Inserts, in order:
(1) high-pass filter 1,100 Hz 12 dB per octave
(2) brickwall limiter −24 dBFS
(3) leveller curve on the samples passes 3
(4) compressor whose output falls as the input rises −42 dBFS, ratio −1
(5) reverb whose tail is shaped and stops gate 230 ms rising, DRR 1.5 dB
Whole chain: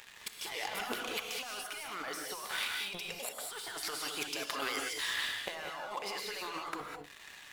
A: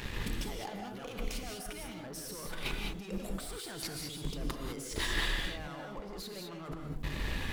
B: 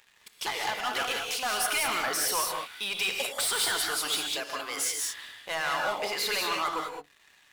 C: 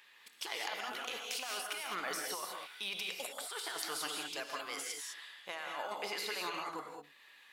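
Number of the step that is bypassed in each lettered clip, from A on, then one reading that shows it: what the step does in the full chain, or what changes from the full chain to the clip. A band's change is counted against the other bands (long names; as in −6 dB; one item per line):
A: 1, 125 Hz band +21.0 dB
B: 4, change in crest factor −5.0 dB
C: 3, change in crest factor +1.5 dB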